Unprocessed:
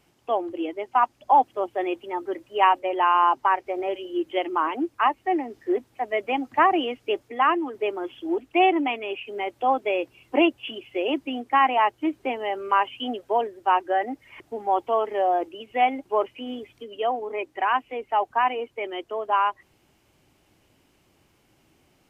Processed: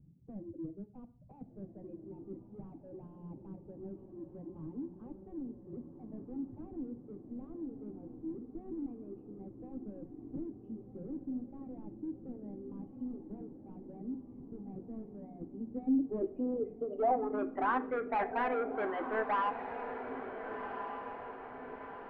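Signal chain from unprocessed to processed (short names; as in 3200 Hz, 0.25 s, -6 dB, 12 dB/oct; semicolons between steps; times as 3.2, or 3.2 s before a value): notch 360 Hz, Q 12; reverb removal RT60 0.99 s; overloaded stage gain 21 dB; tilt shelf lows +9 dB, about 1100 Hz; soft clip -28 dBFS, distortion -7 dB; low-pass sweep 170 Hz -> 1700 Hz, 15.39–17.88; diffused feedback echo 1.444 s, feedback 54%, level -8 dB; on a send at -8.5 dB: reverb RT60 0.50 s, pre-delay 3 ms; on the sum: gain -4 dB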